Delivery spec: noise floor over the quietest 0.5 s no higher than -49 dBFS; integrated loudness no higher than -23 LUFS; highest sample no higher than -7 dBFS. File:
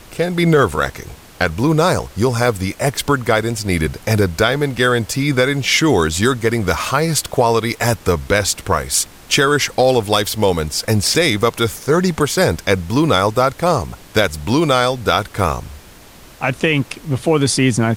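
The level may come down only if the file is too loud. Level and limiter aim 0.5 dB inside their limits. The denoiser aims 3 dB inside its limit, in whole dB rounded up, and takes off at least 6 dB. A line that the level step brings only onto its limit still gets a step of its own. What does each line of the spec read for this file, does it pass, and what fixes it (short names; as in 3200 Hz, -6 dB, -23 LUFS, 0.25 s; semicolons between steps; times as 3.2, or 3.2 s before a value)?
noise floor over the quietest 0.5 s -41 dBFS: fail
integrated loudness -16.5 LUFS: fail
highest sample -3.5 dBFS: fail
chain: denoiser 6 dB, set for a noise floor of -41 dBFS; gain -7 dB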